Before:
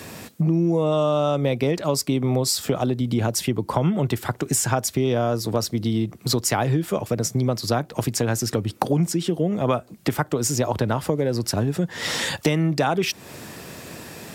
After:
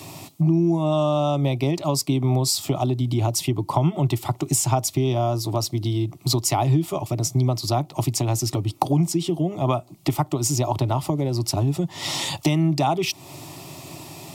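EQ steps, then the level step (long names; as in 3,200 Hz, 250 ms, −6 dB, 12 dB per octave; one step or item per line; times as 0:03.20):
low-shelf EQ 190 Hz +5 dB
parametric band 1,800 Hz +4.5 dB 2.3 octaves
phaser with its sweep stopped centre 320 Hz, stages 8
0.0 dB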